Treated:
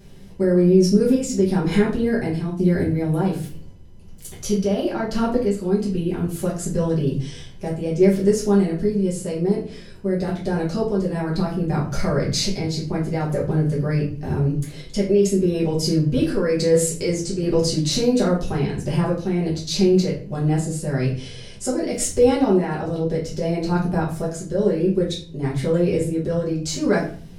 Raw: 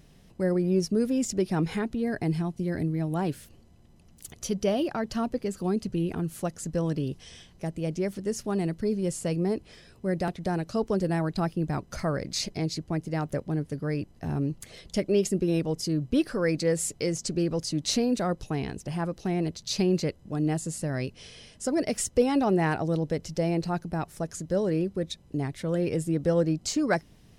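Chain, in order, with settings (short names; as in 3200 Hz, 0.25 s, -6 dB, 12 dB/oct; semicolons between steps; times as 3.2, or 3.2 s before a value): limiter -20.5 dBFS, peak gain reduction 9 dB; random-step tremolo; shoebox room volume 38 m³, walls mixed, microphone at 1.2 m; gain +3.5 dB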